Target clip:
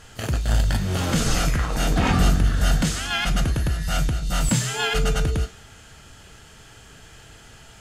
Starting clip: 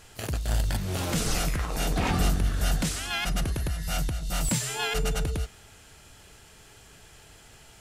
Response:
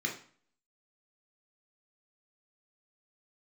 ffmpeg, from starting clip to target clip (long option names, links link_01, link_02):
-filter_complex "[0:a]asplit=2[link_01][link_02];[1:a]atrim=start_sample=2205,highshelf=frequency=4200:gain=12[link_03];[link_02][link_03]afir=irnorm=-1:irlink=0,volume=-12.5dB[link_04];[link_01][link_04]amix=inputs=2:normalize=0,volume=4.5dB"